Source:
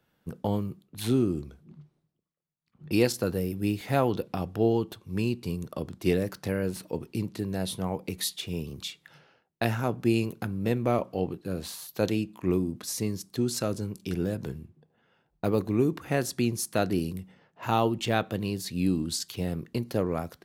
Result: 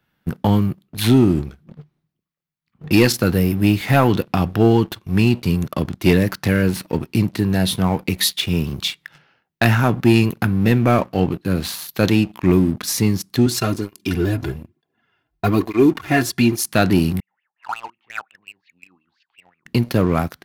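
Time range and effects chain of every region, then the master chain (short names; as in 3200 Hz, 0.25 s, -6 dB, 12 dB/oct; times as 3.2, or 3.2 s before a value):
13.46–16.65 comb 2.9 ms, depth 56% + tape flanging out of phase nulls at 1.1 Hz, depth 5.5 ms
17.2–19.66 air absorption 210 m + wah 5.6 Hz 790–2800 Hz, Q 13
whole clip: graphic EQ 500/2000/8000 Hz -7/+3/-6 dB; sample leveller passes 2; gain +7 dB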